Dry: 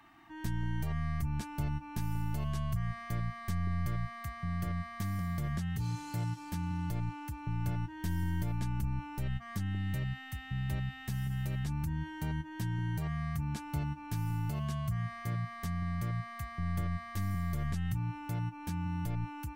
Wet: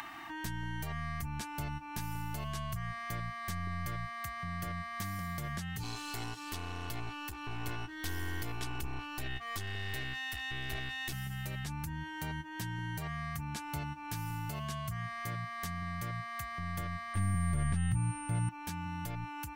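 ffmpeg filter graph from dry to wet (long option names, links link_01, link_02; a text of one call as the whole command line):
ffmpeg -i in.wav -filter_complex "[0:a]asettb=1/sr,asplit=3[link_01][link_02][link_03];[link_01]atrim=end=5.834[link_04];[link_02]atrim=start=5.83:end=11.13,asetpts=PTS-STARTPTS,afade=type=in:duration=0.004:curve=qsin,afade=type=out:start_time=5.296:duration=0.004:curve=qsin,equalizer=frequency=3400:width=1.3:gain=5.5,aeval=exprs='clip(val(0),-1,0.00473)':channel_layout=same,aecho=1:1:2.7:0.66,atrim=end_sample=233730[link_05];[link_03]atrim=start=11.126[link_06];[link_04][link_05]acrossfade=duration=0.004:curve1=hsin:curve2=qsin[link_07];[link_07][link_06]acrossfade=duration=0.004:curve1=qsin:curve2=hsin,asettb=1/sr,asplit=3[link_08][link_09][link_10];[link_08]atrim=end=17.144[link_11];[link_09]atrim=start=17.14:end=18.49,asetpts=PTS-STARTPTS,afade=type=in:duration=0.004:curve=qsin,afade=type=out:start_time=1.346:duration=0.004:curve=qsin,acrossover=split=3300[link_12][link_13];[link_13]acompressor=threshold=-59dB:ratio=4:attack=1:release=60[link_14];[link_12][link_14]amix=inputs=2:normalize=0,bass=frequency=250:gain=9,treble=frequency=4000:gain=-6,aeval=exprs='val(0)+0.00251*sin(2*PI*8900*n/s)':channel_layout=same[link_15];[link_10]atrim=start=18.486[link_16];[link_11][link_15]acrossfade=duration=0.004:curve1=hsin:curve2=qsin[link_17];[link_17][link_16]acrossfade=duration=0.004:curve1=qsin:curve2=hsin,acompressor=mode=upward:threshold=-37dB:ratio=2.5,lowshelf=frequency=470:gain=-11,volume=4.5dB" out.wav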